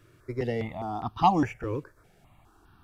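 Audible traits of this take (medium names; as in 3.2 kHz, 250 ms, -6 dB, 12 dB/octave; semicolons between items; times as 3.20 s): notches that jump at a steady rate 4.9 Hz 210–2100 Hz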